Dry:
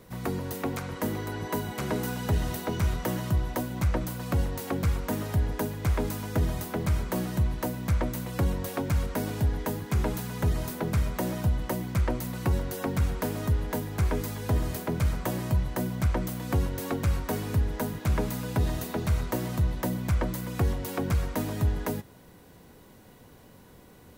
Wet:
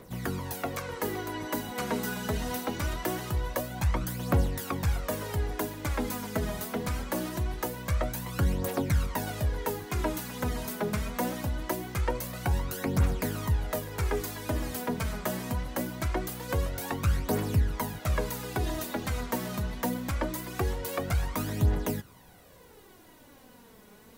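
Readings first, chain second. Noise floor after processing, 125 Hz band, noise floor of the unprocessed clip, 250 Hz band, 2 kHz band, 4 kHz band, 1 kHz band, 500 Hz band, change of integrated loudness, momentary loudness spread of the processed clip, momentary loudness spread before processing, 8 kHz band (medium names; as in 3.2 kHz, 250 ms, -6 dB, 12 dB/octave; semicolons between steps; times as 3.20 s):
-54 dBFS, -3.5 dB, -53 dBFS, -2.5 dB, +1.5 dB, +1.5 dB, +1.0 dB, -0.5 dB, -2.0 dB, 5 LU, 3 LU, +1.5 dB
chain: bass shelf 300 Hz -6 dB; phaser 0.23 Hz, delay 4.9 ms, feedback 54%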